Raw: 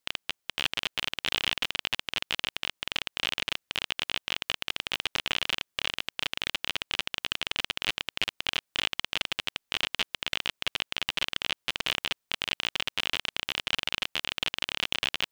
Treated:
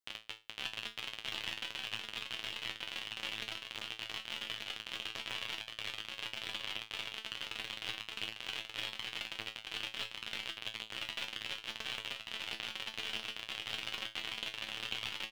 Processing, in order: resonator 110 Hz, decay 0.25 s, harmonics all, mix 90%; on a send: echo 1.182 s -4.5 dB; on the sum: gain -2.5 dB

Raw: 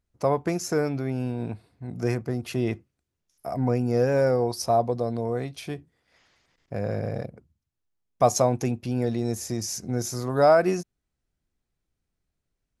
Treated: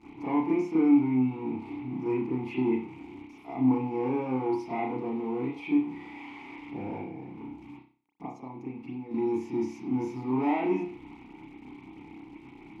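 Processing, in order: zero-crossing step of -35 dBFS; 6.99–9.11 compressor 6:1, threshold -33 dBFS, peak gain reduction 18 dB; soft clip -19 dBFS, distortion -11 dB; vowel filter u; reverb, pre-delay 31 ms, DRR -10 dB; gain +1.5 dB

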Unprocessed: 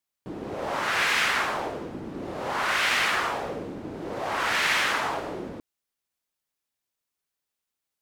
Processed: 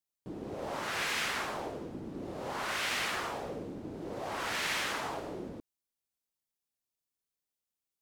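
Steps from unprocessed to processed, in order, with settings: bell 1600 Hz -6.5 dB 2.5 oct; gain -4.5 dB

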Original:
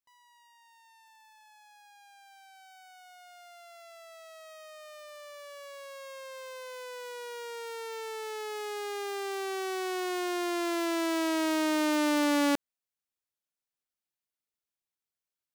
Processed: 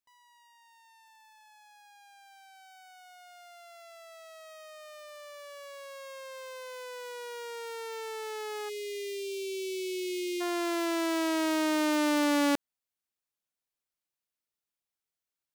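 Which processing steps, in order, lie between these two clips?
spectral delete 8.69–10.41, 450–2000 Hz

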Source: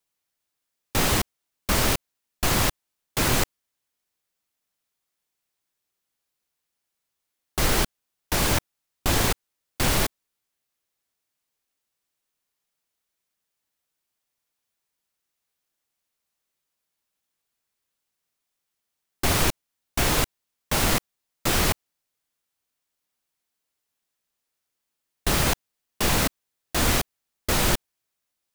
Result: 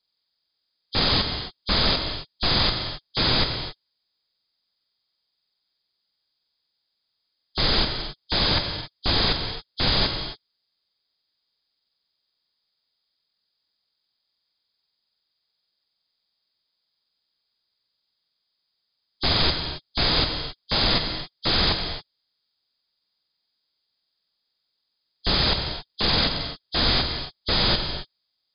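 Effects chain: nonlinear frequency compression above 3100 Hz 4:1; non-linear reverb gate 0.3 s flat, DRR 5.5 dB; gain -1.5 dB

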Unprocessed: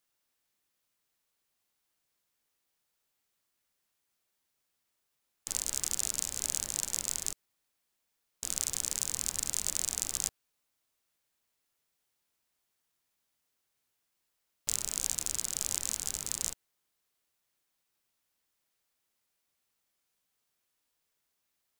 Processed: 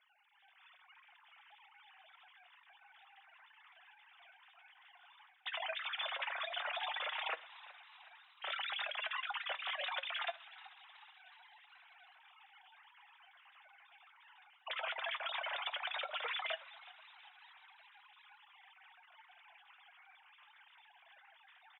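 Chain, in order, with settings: sine-wave speech; flange 0.11 Hz, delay 4.7 ms, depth 4.1 ms, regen +53%; HPF 560 Hz 12 dB/oct; flange 1.7 Hz, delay 0.4 ms, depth 2.6 ms, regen +62%; reverse; compressor 8:1, threshold -54 dBFS, peak gain reduction 18.5 dB; reverse; air absorption 86 m; frequency-shifting echo 0.37 s, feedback 57%, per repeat +85 Hz, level -18 dB; on a send at -18 dB: reverb RT60 0.40 s, pre-delay 5 ms; on the sum: AGC gain up to 12 dB; gain +5 dB

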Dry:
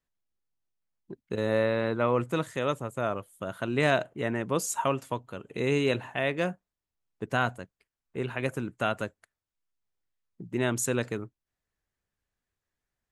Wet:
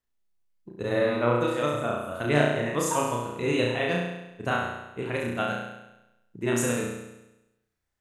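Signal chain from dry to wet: granular stretch 0.61×, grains 0.103 s; flutter echo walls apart 5.8 m, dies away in 0.96 s

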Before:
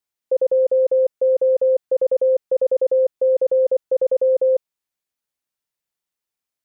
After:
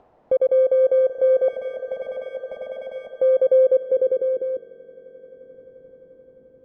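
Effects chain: FFT order left unsorted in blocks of 16 samples; 1.48–3.11 Chebyshev band-stop 250–670 Hz, order 3; upward compressor, threshold -22 dBFS; soft clip -20 dBFS, distortion -12 dB; swelling echo 87 ms, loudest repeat 8, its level -17 dB; low-pass sweep 690 Hz -> 280 Hz, 3.3–4.85; gain +1.5 dB

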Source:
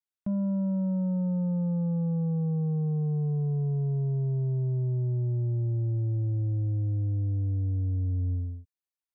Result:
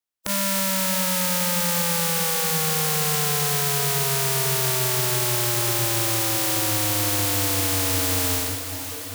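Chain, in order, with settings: spectral contrast lowered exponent 0.2; de-hum 54.3 Hz, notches 3; on a send: diffused feedback echo 0.565 s, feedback 61%, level -10 dB; on the sum: maximiser +5 dB

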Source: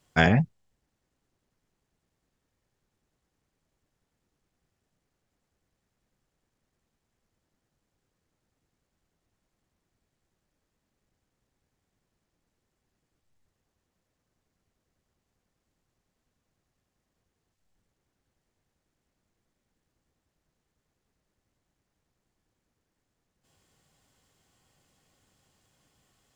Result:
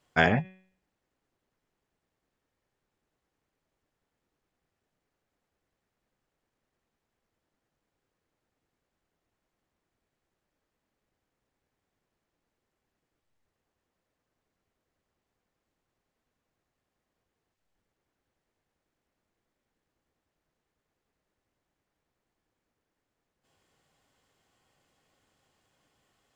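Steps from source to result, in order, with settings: tone controls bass -7 dB, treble -7 dB; de-hum 187.4 Hz, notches 21; ending taper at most 300 dB/s

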